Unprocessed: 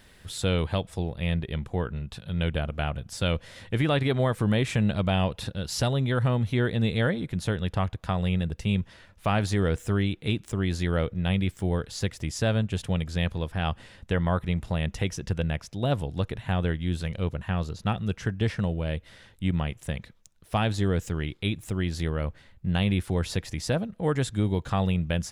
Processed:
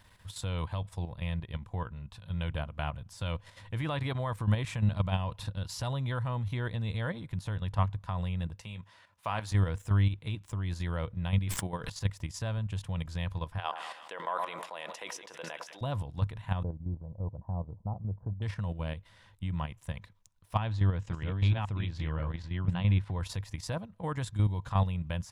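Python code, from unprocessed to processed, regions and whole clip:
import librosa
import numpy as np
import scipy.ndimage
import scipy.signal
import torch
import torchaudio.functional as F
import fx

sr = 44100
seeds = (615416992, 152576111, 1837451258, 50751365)

y = fx.chain(x, sr, fx.highpass(hz=420.0, slope=6),
    fx.doubler(ms=18.0, db=-12.5), at=(8.59, 9.52))
y = fx.chain(y, sr, fx.peak_eq(hz=81.0, db=-13.0, octaves=0.96),
    fx.env_flatten(amount_pct=100), at=(11.47, 11.9))
y = fx.chain(y, sr, fx.highpass(hz=380.0, slope=24),
    fx.echo_split(split_hz=1300.0, low_ms=105, high_ms=172, feedback_pct=52, wet_db=-15.0),
    fx.sustainer(db_per_s=36.0), at=(13.58, 15.81))
y = fx.chain(y, sr, fx.steep_lowpass(hz=840.0, slope=36),
    fx.low_shelf(hz=250.0, db=-3.0), at=(16.63, 18.42))
y = fx.chain(y, sr, fx.reverse_delay(ms=542, wet_db=-2),
    fx.lowpass(hz=4000.0, slope=12), at=(20.57, 23.2))
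y = fx.graphic_eq_31(y, sr, hz=(100, 250, 400, 1000), db=(10, -5, -9, 11))
y = fx.level_steps(y, sr, step_db=9)
y = F.gain(torch.from_numpy(y), -5.0).numpy()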